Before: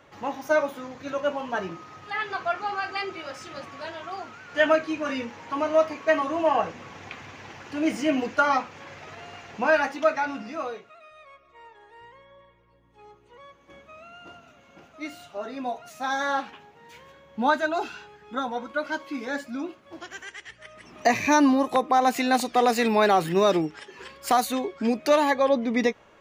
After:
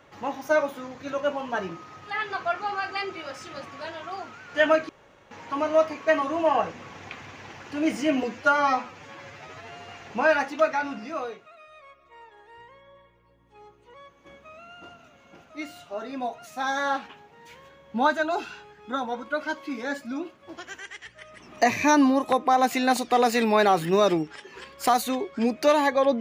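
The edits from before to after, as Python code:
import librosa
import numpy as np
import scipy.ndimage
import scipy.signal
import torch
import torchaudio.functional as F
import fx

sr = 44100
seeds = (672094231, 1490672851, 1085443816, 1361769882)

y = fx.edit(x, sr, fx.room_tone_fill(start_s=4.89, length_s=0.42),
    fx.stretch_span(start_s=8.23, length_s=1.13, factor=1.5), tone=tone)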